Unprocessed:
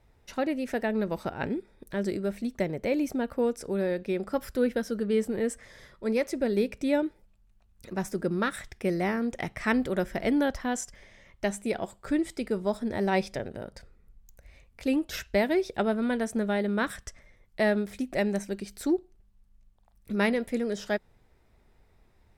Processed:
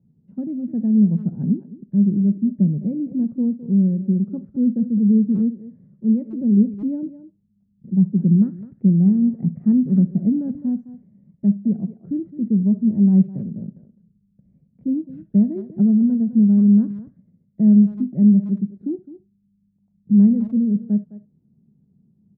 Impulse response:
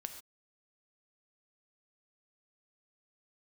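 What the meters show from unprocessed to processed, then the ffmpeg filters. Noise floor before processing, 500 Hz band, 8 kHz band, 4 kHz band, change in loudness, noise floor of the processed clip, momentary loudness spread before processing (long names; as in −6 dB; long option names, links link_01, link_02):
−63 dBFS, −8.5 dB, below −35 dB, below −35 dB, +10.5 dB, −64 dBFS, 8 LU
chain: -filter_complex "[0:a]asuperpass=centerf=180:order=4:qfactor=2.2,asplit=2[link_01][link_02];[link_02]adelay=210,highpass=300,lowpass=3400,asoftclip=type=hard:threshold=-33.5dB,volume=-12dB[link_03];[link_01][link_03]amix=inputs=2:normalize=0,asplit=2[link_04][link_05];[1:a]atrim=start_sample=2205,atrim=end_sample=3528[link_06];[link_05][link_06]afir=irnorm=-1:irlink=0,volume=7.5dB[link_07];[link_04][link_07]amix=inputs=2:normalize=0,volume=9dB"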